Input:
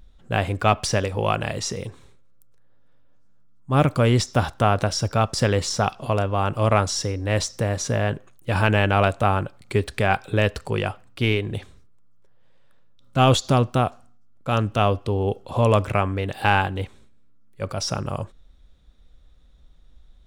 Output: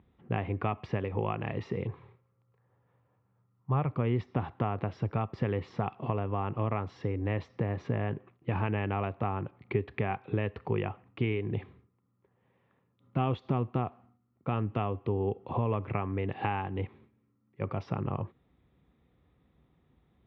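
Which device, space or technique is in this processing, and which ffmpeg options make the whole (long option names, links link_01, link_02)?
bass amplifier: -filter_complex "[0:a]asettb=1/sr,asplit=3[link_01][link_02][link_03];[link_01]atrim=end=1.884[link_04];[link_02]atrim=start=1.88:end=3.91,asetpts=PTS-STARTPTS,afade=type=in:duration=0.004:curve=qsin,afade=type=out:start_time=2.026:duration=0.004:curve=qsin,equalizer=frequency=125:width_type=o:width=1:gain=6,equalizer=frequency=250:width_type=o:width=1:gain=-10,equalizer=frequency=500:width_type=o:width=1:gain=3,equalizer=frequency=1000:width_type=o:width=1:gain=4[link_05];[link_03]atrim=start=3.906[link_06];[link_04][link_05]acrossfade=duration=0.004:curve1=hsin:curve2=qsin[link_07];[link_07][link_06]acrossfade=duration=0.004:curve1=qsin:curve2=hsin,acompressor=threshold=-27dB:ratio=4,highpass=frequency=89:width=0.5412,highpass=frequency=89:width=1.3066,equalizer=frequency=370:width_type=q:width=4:gain=3,equalizer=frequency=590:width_type=q:width=4:gain=-8,equalizer=frequency=1500:width_type=q:width=4:gain=-10,lowpass=frequency=2300:width=0.5412,lowpass=frequency=2300:width=1.3066"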